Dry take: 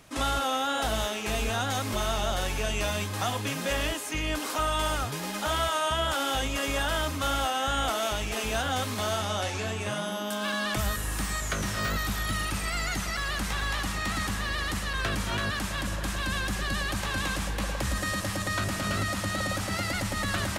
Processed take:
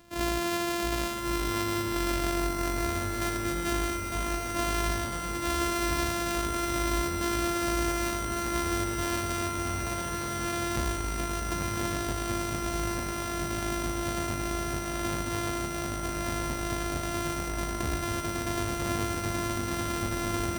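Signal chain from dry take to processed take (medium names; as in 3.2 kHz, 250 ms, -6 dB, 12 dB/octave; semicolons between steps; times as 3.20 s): sorted samples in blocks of 128 samples; echo that smears into a reverb 1108 ms, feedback 75%, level -5.5 dB; trim -1.5 dB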